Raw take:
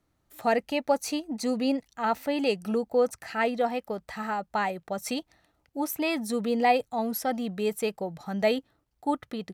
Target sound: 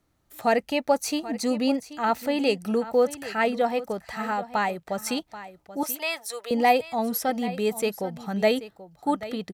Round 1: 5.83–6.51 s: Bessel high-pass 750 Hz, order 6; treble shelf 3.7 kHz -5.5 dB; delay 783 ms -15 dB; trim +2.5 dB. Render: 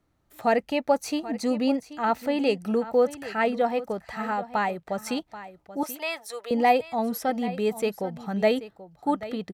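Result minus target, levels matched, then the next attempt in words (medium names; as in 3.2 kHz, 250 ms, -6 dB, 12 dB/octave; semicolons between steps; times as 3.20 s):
8 kHz band -5.5 dB
5.83–6.51 s: Bessel high-pass 750 Hz, order 6; treble shelf 3.7 kHz +2 dB; delay 783 ms -15 dB; trim +2.5 dB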